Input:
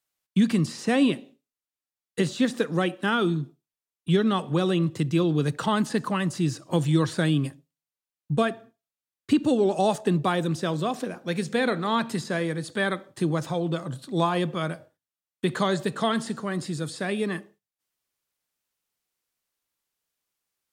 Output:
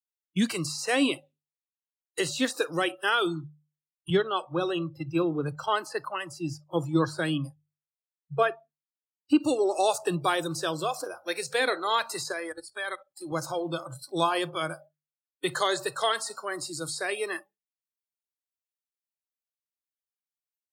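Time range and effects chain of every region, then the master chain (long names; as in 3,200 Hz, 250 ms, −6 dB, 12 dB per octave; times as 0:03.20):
0:04.10–0:09.40: high-shelf EQ 3,400 Hz −9.5 dB + multiband upward and downward expander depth 100%
0:12.32–0:13.32: low-shelf EQ 230 Hz −7.5 dB + output level in coarse steps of 16 dB
whole clip: noise reduction from a noise print of the clip's start 24 dB; spectral tilt +2 dB per octave; mains-hum notches 50/100/150 Hz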